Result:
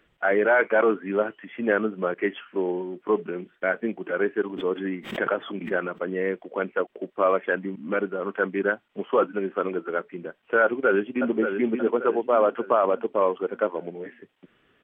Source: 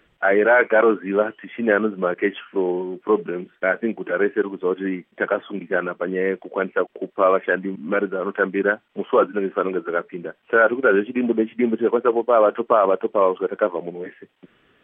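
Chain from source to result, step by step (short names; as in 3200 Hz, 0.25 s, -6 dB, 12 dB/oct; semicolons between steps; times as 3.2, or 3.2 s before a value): 4.45–6.01 backwards sustainer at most 100 dB/s; 10.63–11.3 echo throw 0.58 s, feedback 45%, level -7 dB; gain -4.5 dB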